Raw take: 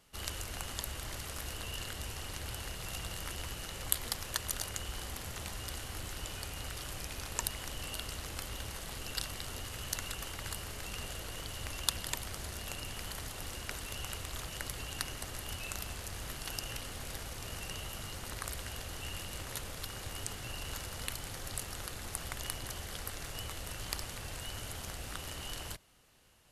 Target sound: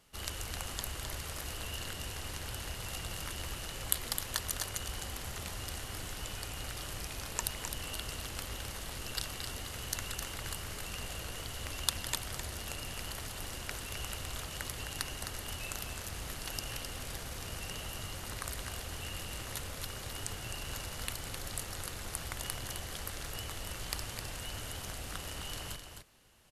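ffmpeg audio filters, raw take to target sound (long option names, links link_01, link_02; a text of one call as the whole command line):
ffmpeg -i in.wav -af "aecho=1:1:260:0.447" out.wav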